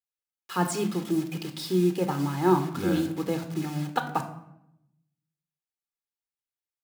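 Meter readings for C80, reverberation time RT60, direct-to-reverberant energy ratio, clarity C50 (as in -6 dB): 14.0 dB, 0.80 s, 6.5 dB, 10.5 dB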